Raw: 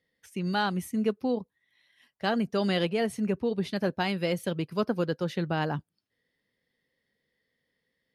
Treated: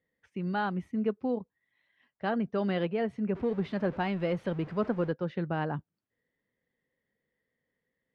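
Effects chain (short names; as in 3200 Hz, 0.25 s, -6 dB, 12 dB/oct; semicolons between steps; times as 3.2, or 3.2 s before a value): 3.35–5.12 zero-crossing step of -36.5 dBFS; LPF 2000 Hz 12 dB/oct; gain -2.5 dB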